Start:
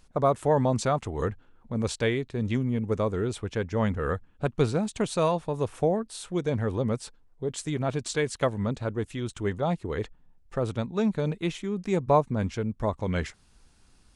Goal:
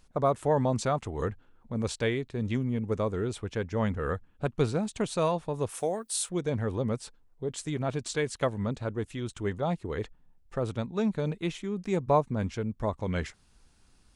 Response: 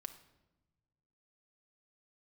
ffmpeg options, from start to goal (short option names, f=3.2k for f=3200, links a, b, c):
-filter_complex "[0:a]asplit=3[a][b][c];[a]afade=t=out:st=5.68:d=0.02[d];[b]aemphasis=mode=production:type=riaa,afade=t=in:st=5.68:d=0.02,afade=t=out:st=6.28:d=0.02[e];[c]afade=t=in:st=6.28:d=0.02[f];[d][e][f]amix=inputs=3:normalize=0,volume=-2.5dB"